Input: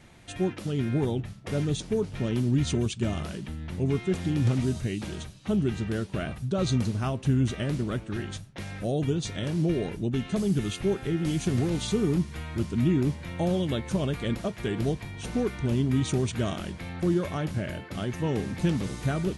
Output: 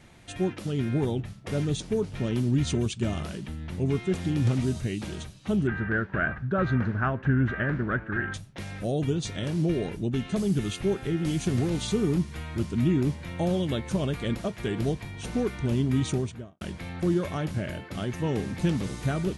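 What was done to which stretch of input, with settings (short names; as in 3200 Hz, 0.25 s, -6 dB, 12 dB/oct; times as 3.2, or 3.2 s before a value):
5.67–8.34 synth low-pass 1600 Hz, resonance Q 6.5
16.03–16.61 studio fade out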